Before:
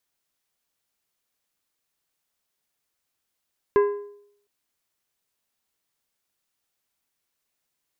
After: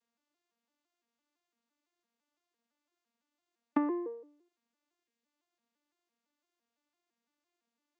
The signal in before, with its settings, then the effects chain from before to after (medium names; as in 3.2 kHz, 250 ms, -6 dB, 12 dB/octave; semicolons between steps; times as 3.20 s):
metal hit plate, length 0.71 s, lowest mode 409 Hz, decay 0.69 s, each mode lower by 9 dB, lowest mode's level -12.5 dB
vocoder on a broken chord major triad, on A#3, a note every 169 ms; time-frequency box 5.03–5.25 s, 600–1600 Hz -7 dB; compression 5:1, threshold -27 dBFS